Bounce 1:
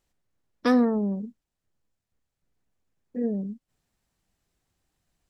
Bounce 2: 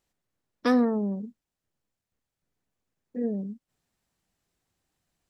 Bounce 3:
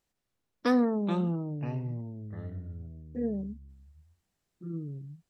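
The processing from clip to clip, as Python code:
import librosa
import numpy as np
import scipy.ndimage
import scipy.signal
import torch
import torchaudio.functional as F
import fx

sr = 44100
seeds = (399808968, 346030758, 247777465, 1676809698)

y1 = fx.low_shelf(x, sr, hz=71.0, db=-8.5)
y1 = y1 * librosa.db_to_amplitude(-1.0)
y2 = fx.echo_pitch(y1, sr, ms=158, semitones=-6, count=3, db_per_echo=-6.0)
y2 = y2 * librosa.db_to_amplitude(-2.5)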